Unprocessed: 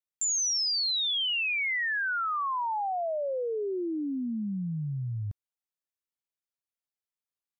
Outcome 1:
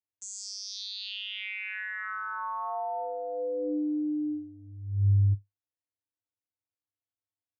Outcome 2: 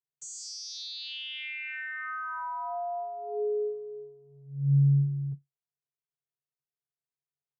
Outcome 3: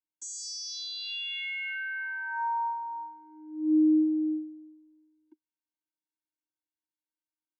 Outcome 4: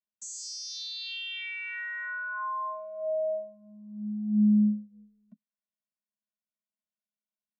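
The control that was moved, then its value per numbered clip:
channel vocoder, frequency: 100, 140, 310, 210 Hertz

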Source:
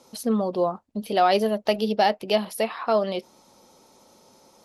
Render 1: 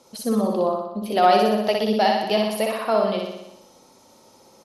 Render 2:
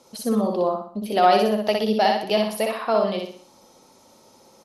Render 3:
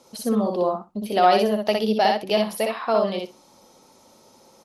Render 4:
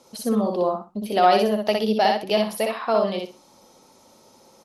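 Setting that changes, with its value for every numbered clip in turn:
repeating echo, feedback: 63, 42, 15, 23%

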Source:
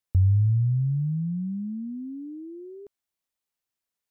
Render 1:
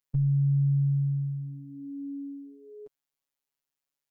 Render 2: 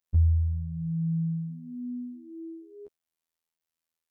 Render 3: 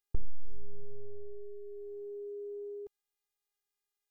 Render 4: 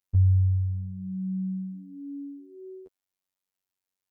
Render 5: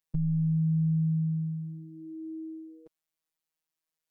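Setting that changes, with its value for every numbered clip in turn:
phases set to zero, frequency: 140, 82, 410, 94, 160 Hertz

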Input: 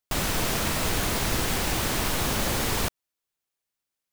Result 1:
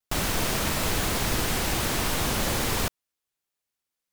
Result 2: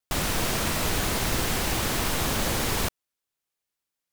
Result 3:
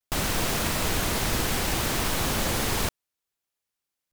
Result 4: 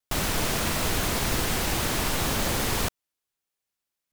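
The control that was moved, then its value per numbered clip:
pitch vibrato, speed: 1.2, 3.1, 0.64, 1.8 Hertz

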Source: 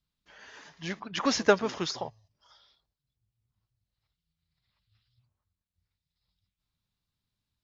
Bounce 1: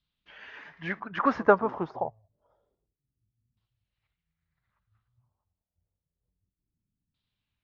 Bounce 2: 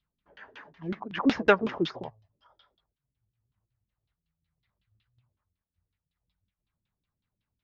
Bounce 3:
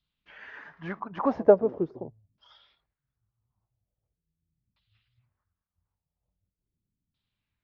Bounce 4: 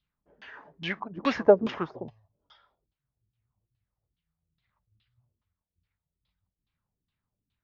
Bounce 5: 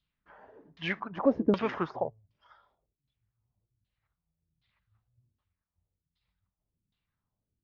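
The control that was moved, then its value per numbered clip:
auto-filter low-pass, speed: 0.28, 5.4, 0.42, 2.4, 1.3 Hertz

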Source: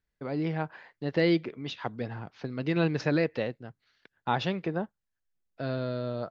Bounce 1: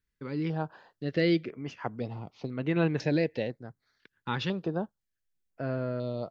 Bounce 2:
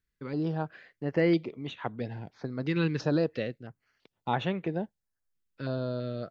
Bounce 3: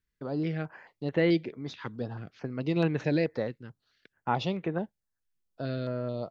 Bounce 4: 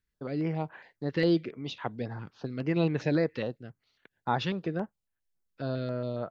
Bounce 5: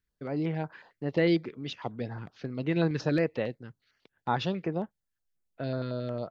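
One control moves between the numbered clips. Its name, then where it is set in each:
notch on a step sequencer, speed: 2, 3, 4.6, 7.3, 11 Hertz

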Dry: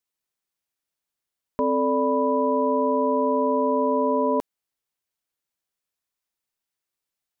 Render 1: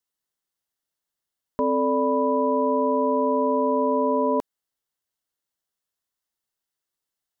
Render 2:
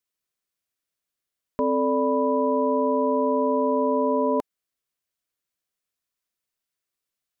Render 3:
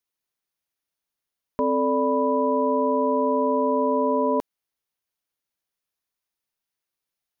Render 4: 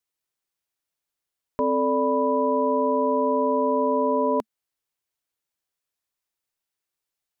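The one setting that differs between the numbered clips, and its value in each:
notch filter, centre frequency: 2,400, 860, 7,700, 220 Hertz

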